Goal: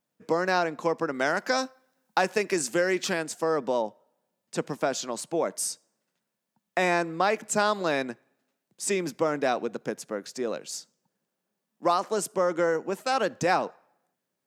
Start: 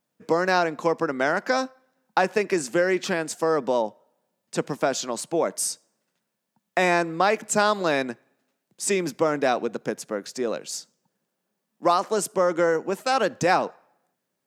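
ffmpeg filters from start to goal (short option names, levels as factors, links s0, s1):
-filter_complex "[0:a]asettb=1/sr,asplit=3[s0][s1][s2];[s0]atrim=end=1.144[s3];[s1]atrim=start=1.14:end=3.23,asetpts=PTS-STARTPTS,afade=t=in:d=0.004:c=qsin,afade=t=out:st=2.086:d=0.004:c=qsin,highshelf=f=3500:g=7.5[s4];[s2]atrim=start=3.226[s5];[s3][s4]acrossfade=d=0.004:c1=hsin:c2=qsin[s6];[s6][s5]acrossfade=d=0.004:c1=qsin:c2=hsin,volume=0.668"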